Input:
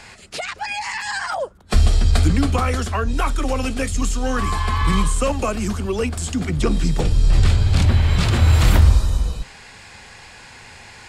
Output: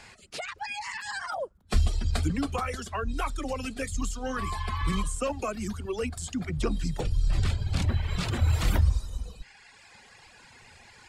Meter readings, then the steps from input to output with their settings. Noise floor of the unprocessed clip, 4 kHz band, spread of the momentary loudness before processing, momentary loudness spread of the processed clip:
−43 dBFS, −10.0 dB, 10 LU, 9 LU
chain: reverb reduction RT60 1.5 s
level −8 dB

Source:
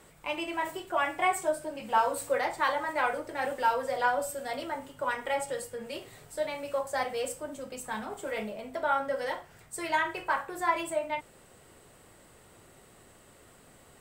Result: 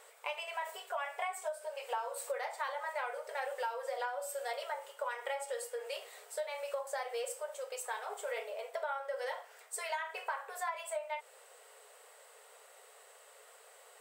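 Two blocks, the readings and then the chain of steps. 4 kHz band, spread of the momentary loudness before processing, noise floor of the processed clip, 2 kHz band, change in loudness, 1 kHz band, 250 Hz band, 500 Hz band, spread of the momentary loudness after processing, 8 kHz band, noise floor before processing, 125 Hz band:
−5.5 dB, 11 LU, −59 dBFS, −8.5 dB, −8.0 dB, −9.5 dB, below −35 dB, −6.5 dB, 19 LU, −4.0 dB, −57 dBFS, below −40 dB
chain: downward compressor 12 to 1, threshold −34 dBFS, peak gain reduction 14.5 dB
linear-phase brick-wall high-pass 410 Hz

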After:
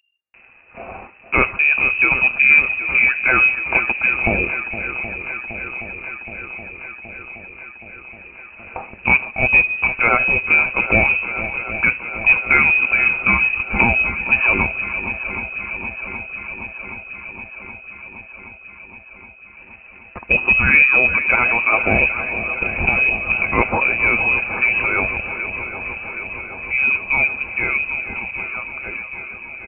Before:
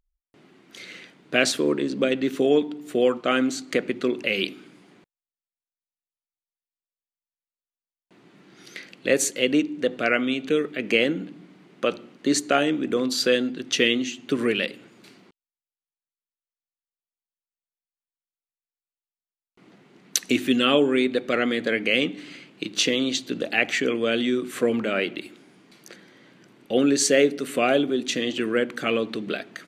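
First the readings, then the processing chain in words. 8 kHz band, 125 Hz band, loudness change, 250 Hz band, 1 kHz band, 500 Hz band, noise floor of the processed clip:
below −40 dB, +9.5 dB, +7.5 dB, −5.5 dB, +8.5 dB, −5.0 dB, −43 dBFS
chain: fade-out on the ending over 6.41 s
comb filter 7 ms, depth 36%
in parallel at −3 dB: downward compressor, threshold −32 dBFS, peak gain reduction 18.5 dB
on the sum: wave folding −4.5 dBFS
leveller curve on the samples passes 1
on a send: feedback echo with a long and a short gap by turns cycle 772 ms, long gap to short 1.5 to 1, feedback 70%, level −12 dB
on the sum: voice inversion scrambler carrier 2,800 Hz
level +1.5 dB

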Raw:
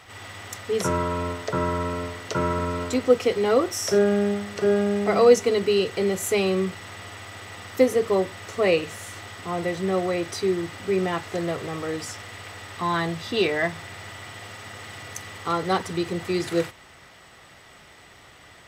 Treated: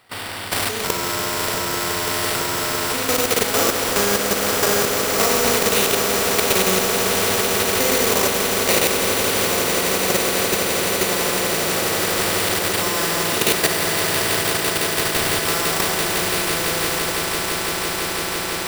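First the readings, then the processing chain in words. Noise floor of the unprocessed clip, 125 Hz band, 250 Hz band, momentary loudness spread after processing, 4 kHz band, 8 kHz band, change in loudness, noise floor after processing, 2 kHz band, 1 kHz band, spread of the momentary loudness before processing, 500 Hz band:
−50 dBFS, +1.5 dB, +1.0 dB, 5 LU, +14.0 dB, +17.0 dB, +6.0 dB, −25 dBFS, +11.0 dB, +7.0 dB, 18 LU, +0.5 dB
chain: gain on a spectral selection 0:04.37–0:04.66, 410–1,700 Hz +10 dB
noise gate −43 dBFS, range −22 dB
high-pass filter 96 Hz 24 dB per octave
mains-hum notches 60/120/180 Hz
dynamic equaliser 200 Hz, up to −4 dB, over −34 dBFS, Q 1.8
four-comb reverb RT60 1.7 s, combs from 33 ms, DRR −6 dB
in parallel at −1.5 dB: downward compressor 6 to 1, threshold −26 dBFS, peak gain reduction 18.5 dB
on the sum: sample-rate reduction 6,500 Hz, jitter 0%
output level in coarse steps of 14 dB
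on a send: echo that builds up and dies away 168 ms, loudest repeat 8, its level −12 dB
on the sum: every bin compressed towards the loudest bin 2 to 1

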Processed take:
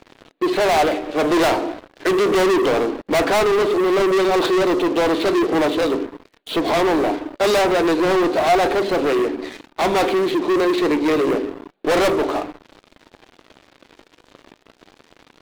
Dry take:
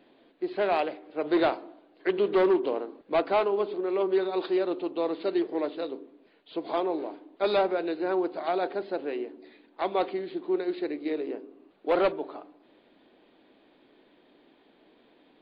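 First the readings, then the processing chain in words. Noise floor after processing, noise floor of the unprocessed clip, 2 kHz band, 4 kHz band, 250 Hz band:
−59 dBFS, −62 dBFS, +14.5 dB, +15.5 dB, +11.0 dB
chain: leveller curve on the samples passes 5
flanger 0.32 Hz, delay 0.4 ms, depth 1.8 ms, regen +90%
level +8 dB

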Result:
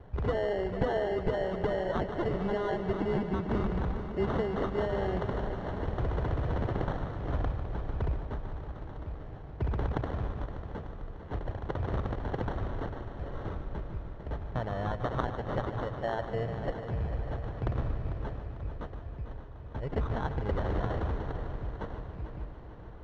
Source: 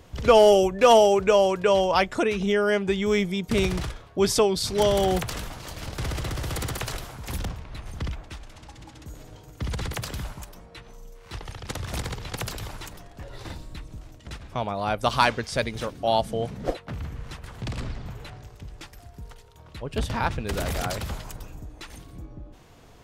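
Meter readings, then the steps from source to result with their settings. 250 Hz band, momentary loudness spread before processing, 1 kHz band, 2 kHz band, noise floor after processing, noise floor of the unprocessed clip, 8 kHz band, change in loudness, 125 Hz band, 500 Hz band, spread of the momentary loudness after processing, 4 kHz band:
−5.5 dB, 24 LU, −10.5 dB, −10.5 dB, −44 dBFS, −50 dBFS, below −30 dB, −10.0 dB, −0.5 dB, −10.0 dB, 11 LU, −19.0 dB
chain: graphic EQ with 10 bands 250 Hz −9 dB, 1,000 Hz −10 dB, 2,000 Hz +9 dB, 4,000 Hz +3 dB
downward compressor, threshold −28 dBFS, peak gain reduction 13.5 dB
decimation without filtering 18×
head-to-tape spacing loss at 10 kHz 42 dB
echo machine with several playback heads 149 ms, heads first and third, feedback 70%, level −12 dB
level +2.5 dB

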